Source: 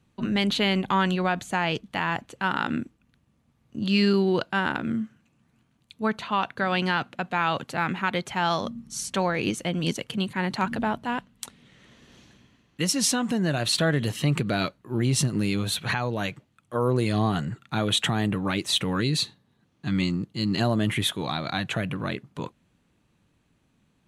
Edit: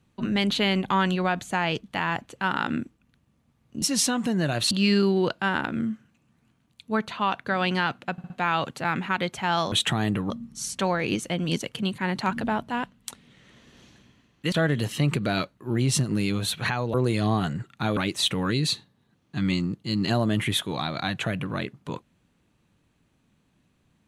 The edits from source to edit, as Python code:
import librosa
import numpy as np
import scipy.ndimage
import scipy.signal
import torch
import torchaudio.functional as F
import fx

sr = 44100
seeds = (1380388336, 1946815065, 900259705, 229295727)

y = fx.edit(x, sr, fx.stutter(start_s=7.23, slice_s=0.06, count=4),
    fx.move(start_s=12.87, length_s=0.89, to_s=3.82),
    fx.cut(start_s=16.18, length_s=0.68),
    fx.move(start_s=17.89, length_s=0.58, to_s=8.65), tone=tone)